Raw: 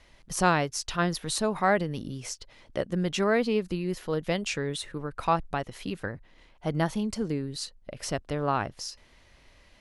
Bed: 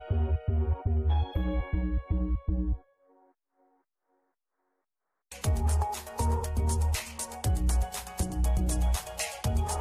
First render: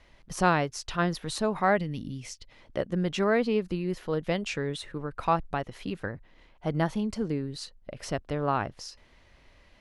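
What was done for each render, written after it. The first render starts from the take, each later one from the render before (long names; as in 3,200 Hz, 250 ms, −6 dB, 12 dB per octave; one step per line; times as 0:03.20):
0:01.77–0:02.51: gain on a spectral selection 310–1,800 Hz −8 dB
high-shelf EQ 5,400 Hz −9.5 dB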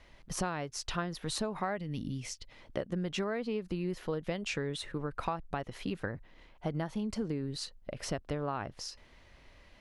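downward compressor 16 to 1, threshold −30 dBFS, peak gain reduction 14 dB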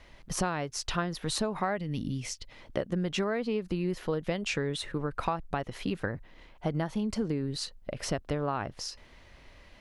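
level +4 dB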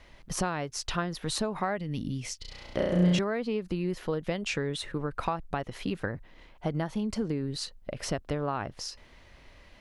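0:02.41–0:03.19: flutter between parallel walls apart 5.8 metres, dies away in 1.3 s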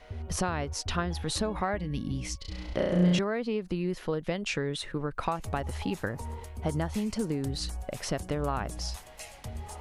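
mix in bed −11 dB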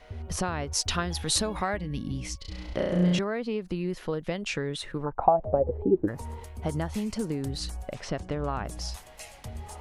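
0:00.73–0:01.77: high-shelf EQ 2,900 Hz +10 dB
0:05.05–0:06.07: low-pass with resonance 960 Hz → 320 Hz, resonance Q 8.7
0:07.94–0:08.65: high-frequency loss of the air 95 metres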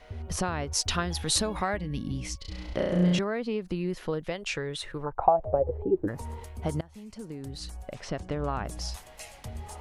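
0:04.26–0:06.06: parametric band 220 Hz −10.5 dB
0:06.81–0:08.43: fade in, from −22 dB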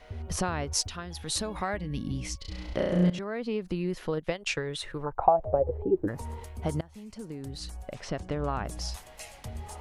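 0:00.88–0:02.03: fade in, from −12.5 dB
0:03.10–0:03.64: fade in equal-power, from −15.5 dB
0:04.17–0:04.68: transient designer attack +4 dB, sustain −8 dB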